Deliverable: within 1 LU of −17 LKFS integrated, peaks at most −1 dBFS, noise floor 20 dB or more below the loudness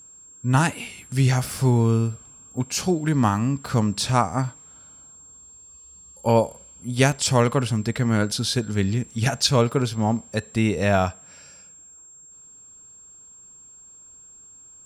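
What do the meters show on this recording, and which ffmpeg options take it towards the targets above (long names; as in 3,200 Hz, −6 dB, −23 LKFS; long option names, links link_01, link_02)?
interfering tone 7,500 Hz; level of the tone −45 dBFS; integrated loudness −22.5 LKFS; sample peak −5.0 dBFS; target loudness −17.0 LKFS
→ -af "bandreject=frequency=7500:width=30"
-af "volume=5.5dB,alimiter=limit=-1dB:level=0:latency=1"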